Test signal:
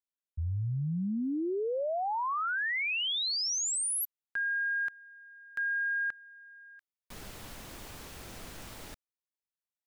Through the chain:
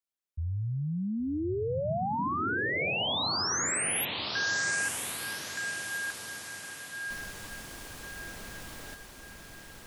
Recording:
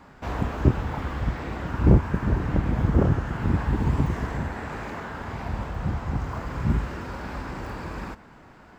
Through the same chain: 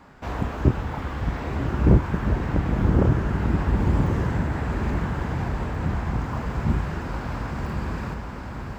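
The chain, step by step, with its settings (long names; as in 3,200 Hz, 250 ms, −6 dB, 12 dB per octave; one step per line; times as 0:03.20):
feedback delay with all-pass diffusion 1,109 ms, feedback 52%, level −4.5 dB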